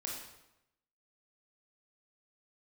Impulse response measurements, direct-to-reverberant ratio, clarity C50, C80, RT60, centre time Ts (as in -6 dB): -2.5 dB, 2.0 dB, 5.0 dB, 0.90 s, 53 ms